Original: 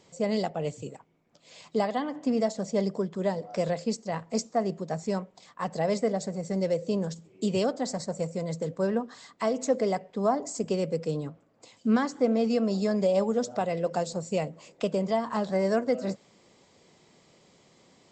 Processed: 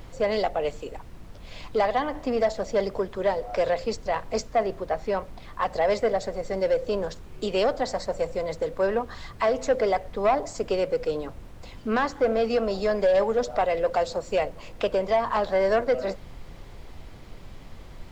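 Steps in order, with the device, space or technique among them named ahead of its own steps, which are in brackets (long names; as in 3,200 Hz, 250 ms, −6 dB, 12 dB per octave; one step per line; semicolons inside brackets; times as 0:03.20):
0:04.66–0:05.62: low-pass filter 4,000 Hz
aircraft cabin announcement (band-pass filter 470–3,700 Hz; soft clipping −23 dBFS, distortion −16 dB; brown noise bed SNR 14 dB)
level +8.5 dB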